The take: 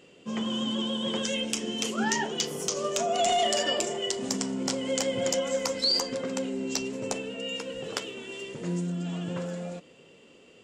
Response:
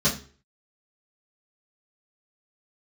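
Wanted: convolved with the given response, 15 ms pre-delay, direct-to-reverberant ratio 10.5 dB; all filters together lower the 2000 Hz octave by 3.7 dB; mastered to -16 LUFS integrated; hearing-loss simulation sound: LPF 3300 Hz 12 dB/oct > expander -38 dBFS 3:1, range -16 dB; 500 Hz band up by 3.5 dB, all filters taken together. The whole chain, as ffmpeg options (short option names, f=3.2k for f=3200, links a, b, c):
-filter_complex "[0:a]equalizer=f=500:t=o:g=4.5,equalizer=f=2k:t=o:g=-4,asplit=2[a][b];[1:a]atrim=start_sample=2205,adelay=15[c];[b][c]afir=irnorm=-1:irlink=0,volume=-23.5dB[d];[a][d]amix=inputs=2:normalize=0,lowpass=3.3k,agate=range=-16dB:threshold=-38dB:ratio=3,volume=12.5dB"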